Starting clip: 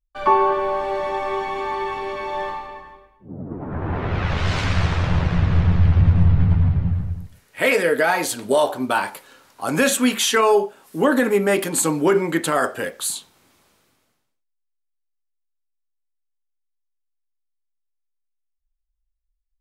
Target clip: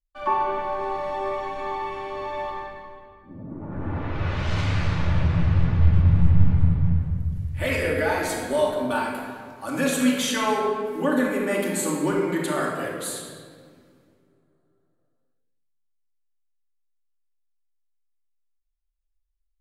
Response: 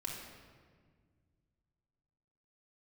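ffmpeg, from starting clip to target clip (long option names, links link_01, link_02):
-filter_complex "[1:a]atrim=start_sample=2205,asetrate=38367,aresample=44100[link_01];[0:a][link_01]afir=irnorm=-1:irlink=0,volume=-6.5dB"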